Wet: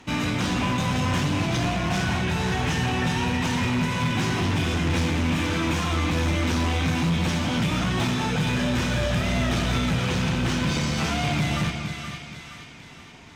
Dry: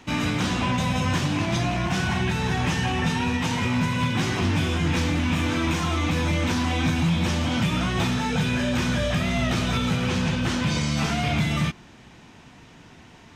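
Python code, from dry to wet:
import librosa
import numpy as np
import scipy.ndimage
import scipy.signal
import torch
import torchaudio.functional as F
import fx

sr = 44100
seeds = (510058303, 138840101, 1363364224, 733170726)

p1 = x + fx.echo_split(x, sr, split_hz=1200.0, low_ms=233, high_ms=471, feedback_pct=52, wet_db=-7.5, dry=0)
y = fx.clip_asym(p1, sr, top_db=-21.5, bottom_db=-16.5)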